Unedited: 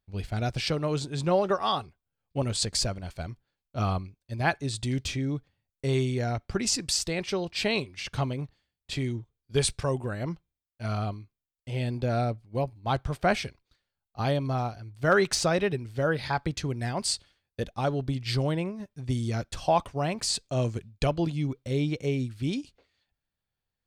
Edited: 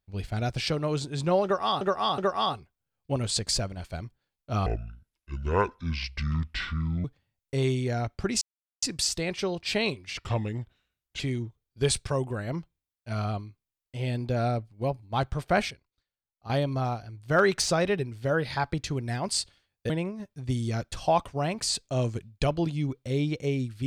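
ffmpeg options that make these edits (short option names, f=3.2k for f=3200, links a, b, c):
-filter_complex "[0:a]asplit=11[a][b][c][d][e][f][g][h][i][j][k];[a]atrim=end=1.812[l];[b]atrim=start=1.438:end=1.812[m];[c]atrim=start=1.438:end=3.924[n];[d]atrim=start=3.92:end=5.35,asetpts=PTS-STARTPTS,asetrate=26460,aresample=44100[o];[e]atrim=start=5.346:end=6.72,asetpts=PTS-STARTPTS,afade=t=out:st=1.37:d=0.004:c=hsin,apad=pad_dur=0.41[p];[f]atrim=start=6.72:end=8.074,asetpts=PTS-STARTPTS,afade=t=in:d=0.004:c=hsin[q];[g]atrim=start=8.07:end=8.93,asetpts=PTS-STARTPTS,asetrate=37044,aresample=44100[r];[h]atrim=start=8.926:end=13.442[s];[i]atrim=start=13.438:end=14.232,asetpts=PTS-STARTPTS,volume=-11dB[t];[j]atrim=start=14.228:end=17.632[u];[k]atrim=start=18.498[v];[l][m]acrossfade=d=0.004:c1=hsin:c2=hsin[w];[w][n]acrossfade=d=0.004:c1=hsin:c2=hsin[x];[x][o]acrossfade=d=0.004:c1=hsin:c2=hsin[y];[p][q]concat=n=2:v=0:a=1[z];[y][z]acrossfade=d=0.004:c1=hsin:c2=hsin[aa];[aa][r]acrossfade=d=0.004:c1=hsin:c2=hsin[ab];[ab][s]acrossfade=d=0.004:c1=hsin:c2=hsin[ac];[ac][t]acrossfade=d=0.004:c1=hsin:c2=hsin[ad];[ad][u]acrossfade=d=0.004:c1=hsin:c2=hsin[ae];[ae][v]acrossfade=d=0.004:c1=hsin:c2=hsin"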